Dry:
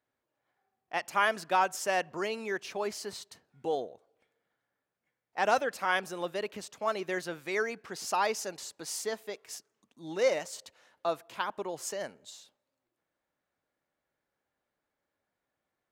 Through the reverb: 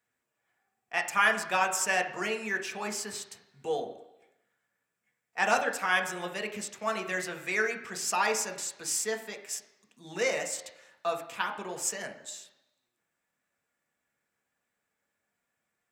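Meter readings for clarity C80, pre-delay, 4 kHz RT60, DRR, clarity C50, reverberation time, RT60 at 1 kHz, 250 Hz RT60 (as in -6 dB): 13.5 dB, 3 ms, 1.0 s, 4.0 dB, 11.0 dB, 0.95 s, 1.0 s, 0.90 s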